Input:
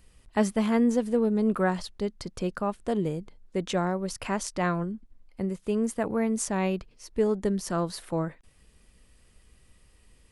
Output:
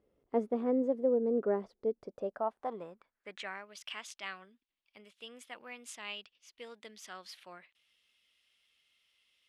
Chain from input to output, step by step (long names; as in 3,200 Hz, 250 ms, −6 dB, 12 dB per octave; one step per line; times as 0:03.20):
wrong playback speed 44.1 kHz file played as 48 kHz
band-pass filter sweep 430 Hz → 3,100 Hz, 0:01.94–0:03.78